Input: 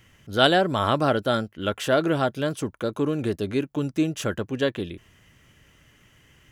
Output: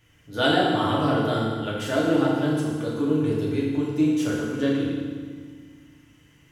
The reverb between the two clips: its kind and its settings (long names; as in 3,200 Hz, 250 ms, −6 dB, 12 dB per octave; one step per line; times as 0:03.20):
feedback delay network reverb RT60 1.7 s, low-frequency decay 1.35×, high-frequency decay 0.85×, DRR −6 dB
level −8.5 dB